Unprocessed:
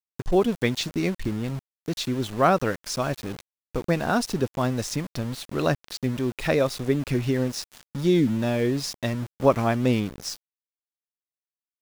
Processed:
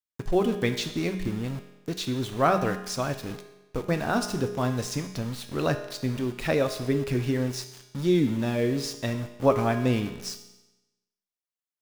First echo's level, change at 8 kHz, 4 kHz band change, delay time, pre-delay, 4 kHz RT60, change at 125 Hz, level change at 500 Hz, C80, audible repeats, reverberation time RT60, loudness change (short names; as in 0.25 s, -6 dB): none, -2.0 dB, -2.0 dB, none, 5 ms, 0.95 s, -1.5 dB, -2.0 dB, 11.5 dB, none, 1.0 s, -2.0 dB